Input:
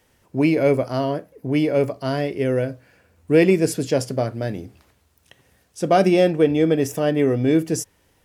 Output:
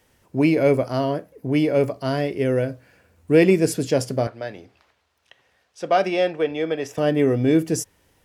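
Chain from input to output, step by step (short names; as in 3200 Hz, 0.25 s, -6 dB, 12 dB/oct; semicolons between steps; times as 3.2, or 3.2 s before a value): 4.27–6.98 three-band isolator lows -14 dB, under 480 Hz, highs -16 dB, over 5500 Hz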